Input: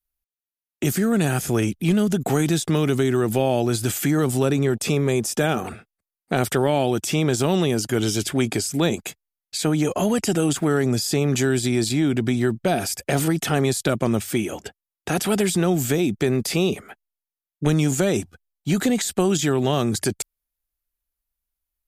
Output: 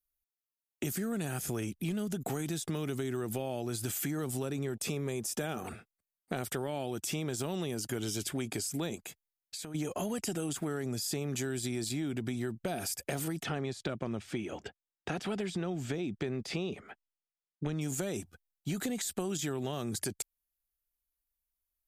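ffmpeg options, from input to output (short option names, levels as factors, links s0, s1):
-filter_complex "[0:a]asplit=3[s0][s1][s2];[s0]afade=t=out:st=8.97:d=0.02[s3];[s1]acompressor=threshold=0.0251:ratio=12:attack=3.2:release=140:knee=1:detection=peak,afade=t=in:st=8.97:d=0.02,afade=t=out:st=9.74:d=0.02[s4];[s2]afade=t=in:st=9.74:d=0.02[s5];[s3][s4][s5]amix=inputs=3:normalize=0,asplit=3[s6][s7][s8];[s6]afade=t=out:st=13.42:d=0.02[s9];[s7]lowpass=4100,afade=t=in:st=13.42:d=0.02,afade=t=out:st=17.8:d=0.02[s10];[s8]afade=t=in:st=17.8:d=0.02[s11];[s9][s10][s11]amix=inputs=3:normalize=0,highshelf=f=8400:g=6.5,acompressor=threshold=0.0562:ratio=4,volume=0.422"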